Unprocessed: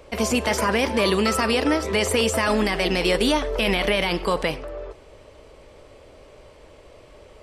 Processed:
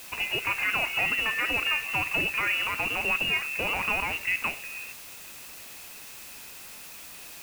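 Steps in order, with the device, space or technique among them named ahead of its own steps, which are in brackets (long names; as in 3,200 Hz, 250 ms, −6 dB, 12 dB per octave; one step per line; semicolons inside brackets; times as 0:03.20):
scrambled radio voice (band-pass filter 310–2,800 Hz; voice inversion scrambler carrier 3,100 Hz; white noise bed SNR 14 dB)
level −4.5 dB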